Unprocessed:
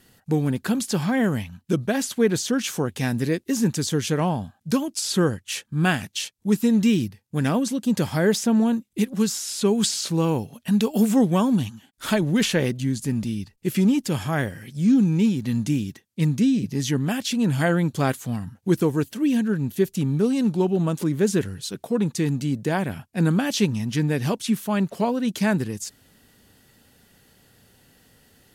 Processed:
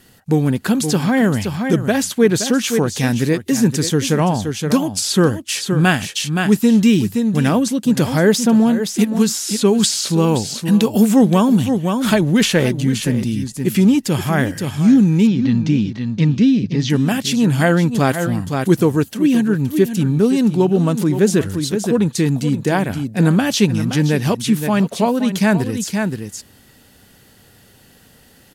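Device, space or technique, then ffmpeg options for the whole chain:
ducked delay: -filter_complex "[0:a]asplit=3[a][b][c];[b]adelay=521,volume=-5dB[d];[c]apad=whole_len=1281819[e];[d][e]sidechaincompress=threshold=-31dB:ratio=3:attack=20:release=121[f];[a][f]amix=inputs=2:normalize=0,asettb=1/sr,asplit=3[g][h][i];[g]atrim=end=15.274[j];[h]atrim=start=15.27:end=16.9,asetpts=PTS-STARTPTS,afade=t=in:d=0.004:c=qsin,afade=t=out:st=1.626:d=0.004:c=qsin,lowpass=f=5.2k:w=0.5412,lowpass=f=5.2k:w=1.3066[k];[i]atrim=start=16.896[l];[j][k]acrossfade=d=0.004:c1=hsin:c2=qsin[m];[m][l]acrossfade=d=0.004:c1=qsin:c2=hsin,volume=6.5dB"

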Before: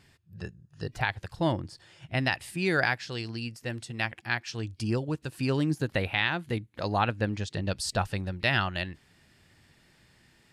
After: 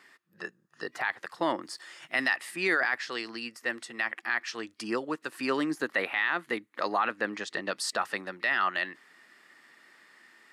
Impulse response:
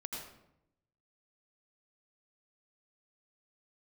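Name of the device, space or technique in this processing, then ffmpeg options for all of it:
laptop speaker: -filter_complex "[0:a]highpass=f=260:w=0.5412,highpass=f=260:w=1.3066,equalizer=f=1.2k:t=o:w=0.57:g=11,equalizer=f=1.9k:t=o:w=0.34:g=9.5,alimiter=limit=-16dB:level=0:latency=1:release=13,asettb=1/sr,asplit=3[a][b][c];[a]atrim=end=1.624[d];[b]atrim=start=1.62:end=2.33,asetpts=PTS-STARTPTS,afade=t=in:d=0.004:c=qsin,afade=t=out:st=0.706:d=0.004:c=qsin,highshelf=f=4.2k:g=12[e];[c]atrim=start=2.326[f];[d][e]acrossfade=d=0.004:c1=hsin:c2=qsin[g];[g][f]acrossfade=d=0.004:c1=qsin:c2=hsin"

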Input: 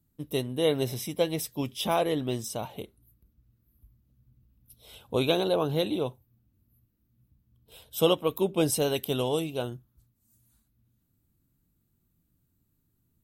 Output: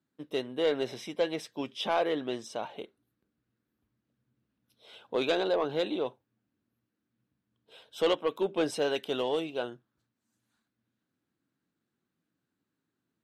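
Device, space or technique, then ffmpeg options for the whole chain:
intercom: -af "highpass=310,lowpass=4.2k,equalizer=f=1.6k:t=o:w=0.4:g=6,asoftclip=type=tanh:threshold=-18dB"

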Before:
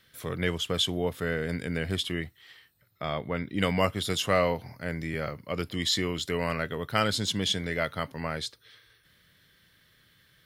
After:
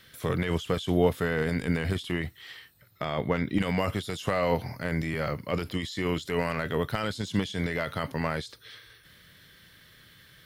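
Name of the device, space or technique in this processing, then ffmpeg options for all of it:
de-esser from a sidechain: -filter_complex "[0:a]asplit=2[a][b];[b]highpass=4.3k,apad=whole_len=461240[c];[a][c]sidechaincompress=threshold=-53dB:ratio=4:attack=2:release=23,volume=7.5dB"

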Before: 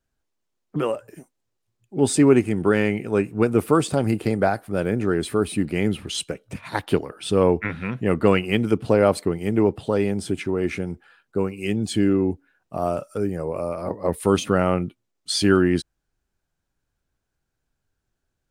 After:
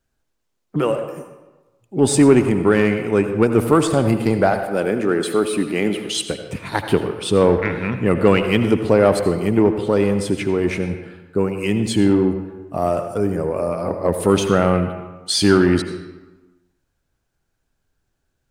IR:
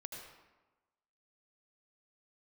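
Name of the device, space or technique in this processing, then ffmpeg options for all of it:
saturated reverb return: -filter_complex "[0:a]asettb=1/sr,asplit=3[a][b][c];[a]atrim=end=4.524[d];[b]atrim=start=4.52:end=6.24,asetpts=PTS-STARTPTS,afade=t=in:d=0.004:c=qsin,afade=t=out:st=1.716:d=0.004:c=qsin,highpass=230[e];[c]atrim=start=6.236[f];[d][e]acrossfade=d=0.004:c1=hsin:c2=qsin[g];[g][f]acrossfade=d=0.004:c1=qsin:c2=hsin,asplit=2[h][i];[1:a]atrim=start_sample=2205[j];[i][j]afir=irnorm=-1:irlink=0,asoftclip=type=tanh:threshold=-19dB,volume=3dB[k];[h][k]amix=inputs=2:normalize=0"

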